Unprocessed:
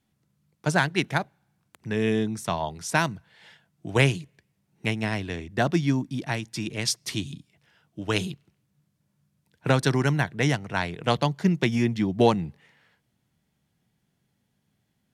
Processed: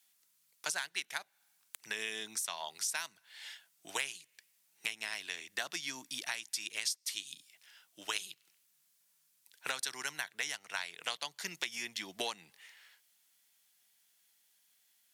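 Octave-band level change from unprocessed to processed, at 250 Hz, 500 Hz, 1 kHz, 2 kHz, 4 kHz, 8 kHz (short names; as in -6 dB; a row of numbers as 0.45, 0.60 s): -29.5, -22.0, -15.5, -9.5, -5.0, -1.5 dB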